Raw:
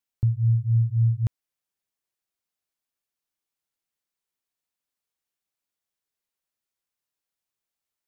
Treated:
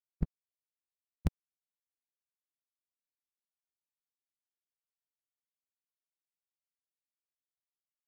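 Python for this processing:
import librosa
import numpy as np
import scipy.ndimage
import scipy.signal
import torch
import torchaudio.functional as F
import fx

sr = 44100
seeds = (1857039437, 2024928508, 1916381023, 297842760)

y = fx.hpss_only(x, sr, part='percussive')
y = np.sign(y) * np.maximum(np.abs(y) - 10.0 ** (-54.0 / 20.0), 0.0)
y = F.gain(torch.from_numpy(y), 5.5).numpy()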